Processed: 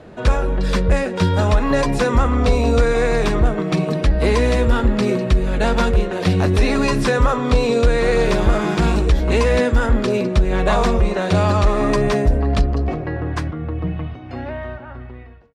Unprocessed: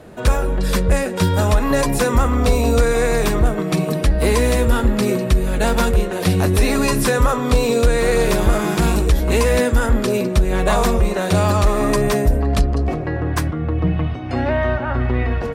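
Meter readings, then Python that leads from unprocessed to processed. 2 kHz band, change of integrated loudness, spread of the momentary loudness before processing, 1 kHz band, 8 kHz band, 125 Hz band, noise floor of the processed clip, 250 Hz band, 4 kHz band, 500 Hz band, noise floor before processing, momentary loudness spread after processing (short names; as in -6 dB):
-0.5 dB, 0.0 dB, 4 LU, -0.5 dB, -8.0 dB, -0.5 dB, -35 dBFS, -0.5 dB, -1.0 dB, 0.0 dB, -24 dBFS, 9 LU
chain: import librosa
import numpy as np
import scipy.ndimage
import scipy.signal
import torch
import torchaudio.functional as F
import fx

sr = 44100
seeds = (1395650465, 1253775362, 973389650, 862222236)

y = fx.fade_out_tail(x, sr, length_s=3.02)
y = scipy.signal.sosfilt(scipy.signal.butter(2, 5200.0, 'lowpass', fs=sr, output='sos'), y)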